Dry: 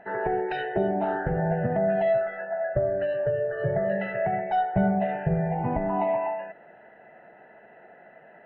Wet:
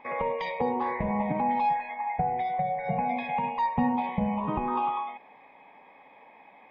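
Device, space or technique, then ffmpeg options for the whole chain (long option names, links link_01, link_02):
nightcore: -af "asetrate=55566,aresample=44100,volume=-2.5dB"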